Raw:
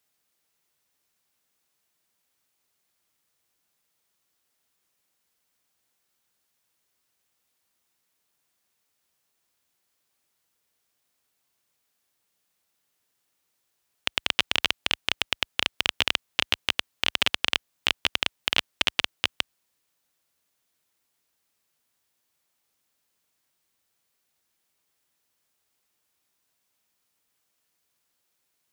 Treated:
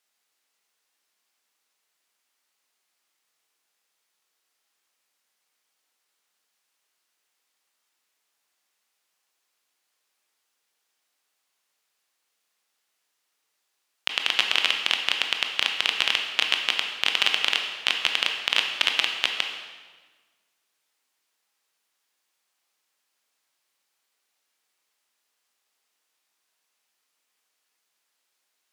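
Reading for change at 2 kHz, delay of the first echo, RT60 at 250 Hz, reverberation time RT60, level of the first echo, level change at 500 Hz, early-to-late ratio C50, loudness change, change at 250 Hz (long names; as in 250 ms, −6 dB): +3.0 dB, no echo audible, 1.6 s, 1.4 s, no echo audible, −1.5 dB, 5.0 dB, +2.5 dB, −5.5 dB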